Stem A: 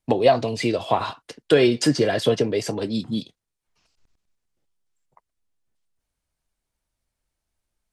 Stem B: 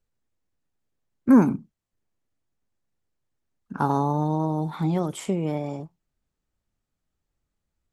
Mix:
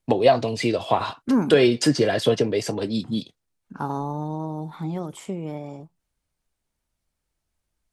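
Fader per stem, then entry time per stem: 0.0, −5.0 decibels; 0.00, 0.00 seconds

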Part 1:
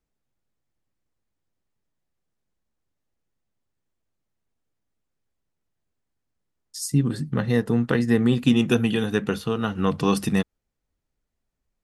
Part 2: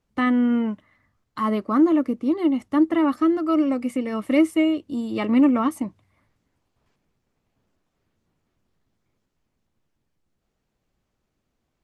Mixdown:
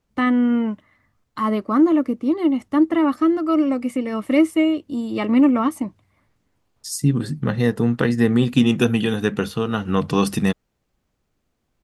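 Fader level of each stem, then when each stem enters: +2.5, +2.0 decibels; 0.10, 0.00 seconds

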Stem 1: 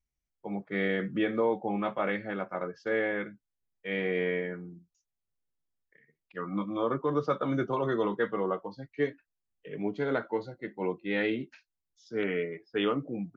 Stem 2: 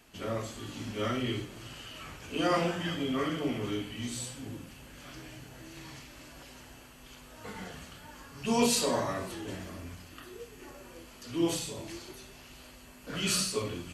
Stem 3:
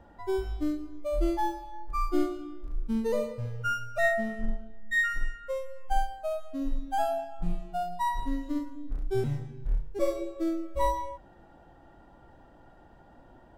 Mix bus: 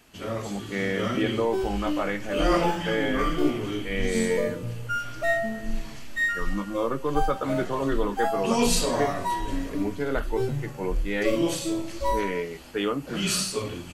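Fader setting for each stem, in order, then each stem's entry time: +1.5, +3.0, +1.0 decibels; 0.00, 0.00, 1.25 seconds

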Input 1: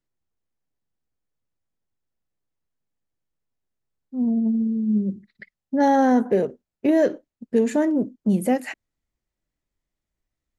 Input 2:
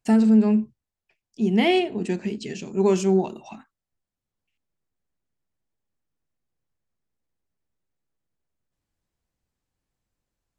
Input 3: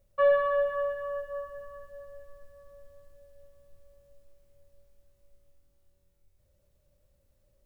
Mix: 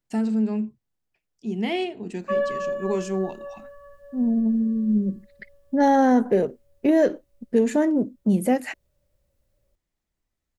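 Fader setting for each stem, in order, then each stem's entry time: 0.0, −6.5, −1.5 decibels; 0.00, 0.05, 2.10 seconds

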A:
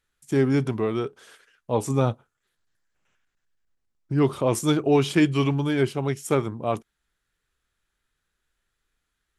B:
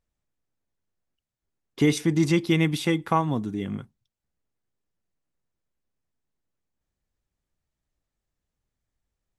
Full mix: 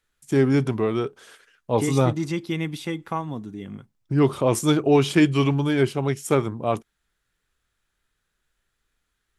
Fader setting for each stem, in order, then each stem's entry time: +2.0, −5.5 decibels; 0.00, 0.00 seconds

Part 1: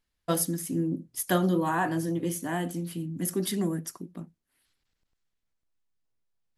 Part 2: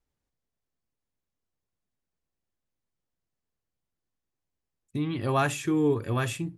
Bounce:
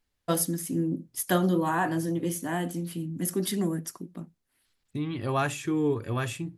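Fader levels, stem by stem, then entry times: +0.5, −2.0 decibels; 0.00, 0.00 seconds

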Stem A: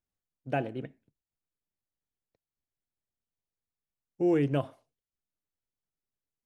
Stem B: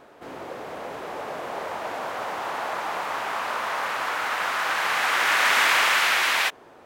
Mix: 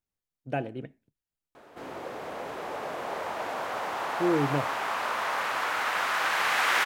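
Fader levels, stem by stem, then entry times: −0.5, −2.0 decibels; 0.00, 1.55 seconds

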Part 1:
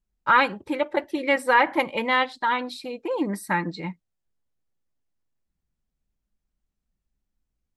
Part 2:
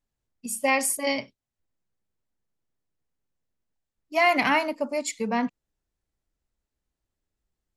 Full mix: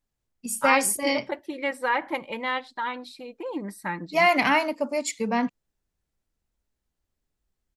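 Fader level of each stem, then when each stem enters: −6.5, +1.0 decibels; 0.35, 0.00 seconds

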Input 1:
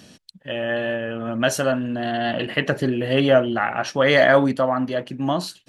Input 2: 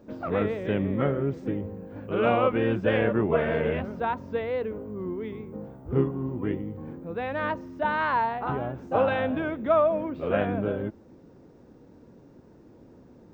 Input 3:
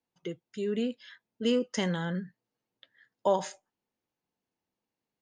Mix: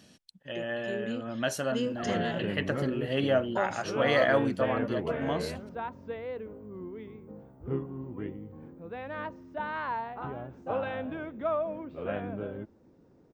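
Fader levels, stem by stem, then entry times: −10.0, −8.5, −5.5 decibels; 0.00, 1.75, 0.30 seconds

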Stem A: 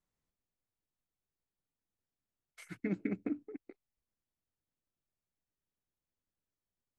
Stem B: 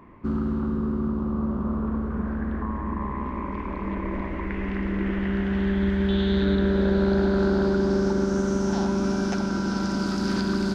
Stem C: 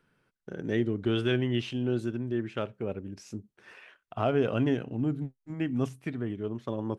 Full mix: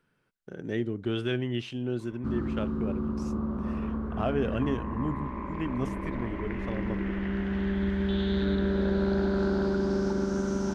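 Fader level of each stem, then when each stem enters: muted, −5.0 dB, −2.5 dB; muted, 2.00 s, 0.00 s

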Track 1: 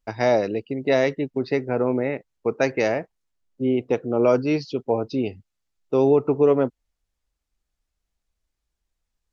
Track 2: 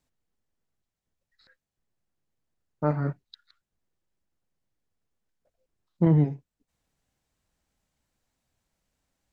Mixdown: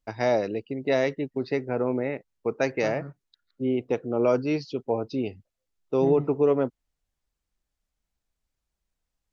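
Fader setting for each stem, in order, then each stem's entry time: −4.0, −12.0 decibels; 0.00, 0.00 seconds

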